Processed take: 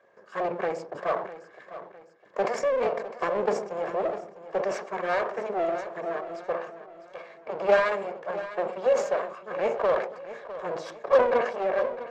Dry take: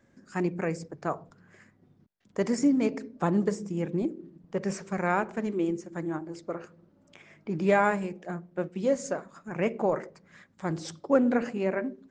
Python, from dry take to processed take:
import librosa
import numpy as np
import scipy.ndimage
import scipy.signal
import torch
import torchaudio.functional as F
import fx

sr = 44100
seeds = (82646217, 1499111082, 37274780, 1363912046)

p1 = fx.lower_of_two(x, sr, delay_ms=1.8)
p2 = scipy.signal.sosfilt(scipy.signal.butter(2, 750.0, 'highpass', fs=sr, output='sos'), p1)
p3 = fx.tilt_shelf(p2, sr, db=9.5, hz=1400.0)
p4 = 10.0 ** (-31.0 / 20.0) * (np.abs((p3 / 10.0 ** (-31.0 / 20.0) + 3.0) % 4.0 - 2.0) - 1.0)
p5 = p3 + (p4 * librosa.db_to_amplitude(-10.0))
p6 = fx.air_absorb(p5, sr, metres=100.0)
p7 = p6 + fx.echo_feedback(p6, sr, ms=655, feedback_pct=41, wet_db=-14, dry=0)
p8 = fx.sustainer(p7, sr, db_per_s=91.0)
y = p8 * librosa.db_to_amplitude(5.5)